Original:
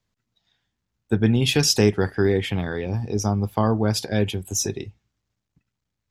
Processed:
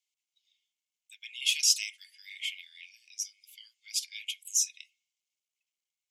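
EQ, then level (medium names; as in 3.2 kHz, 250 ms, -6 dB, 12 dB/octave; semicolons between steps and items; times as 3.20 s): rippled Chebyshev high-pass 2.1 kHz, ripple 6 dB; 0.0 dB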